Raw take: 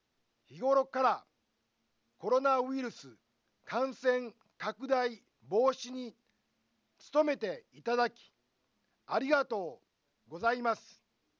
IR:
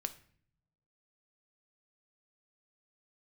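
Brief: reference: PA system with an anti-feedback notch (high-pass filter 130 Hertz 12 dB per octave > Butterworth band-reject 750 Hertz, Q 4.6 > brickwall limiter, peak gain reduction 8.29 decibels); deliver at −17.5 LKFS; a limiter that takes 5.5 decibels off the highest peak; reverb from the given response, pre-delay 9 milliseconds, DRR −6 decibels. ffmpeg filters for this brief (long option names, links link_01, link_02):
-filter_complex "[0:a]alimiter=limit=-22dB:level=0:latency=1,asplit=2[link_01][link_02];[1:a]atrim=start_sample=2205,adelay=9[link_03];[link_02][link_03]afir=irnorm=-1:irlink=0,volume=6.5dB[link_04];[link_01][link_04]amix=inputs=2:normalize=0,highpass=130,asuperstop=centerf=750:order=8:qfactor=4.6,volume=14.5dB,alimiter=limit=-5.5dB:level=0:latency=1"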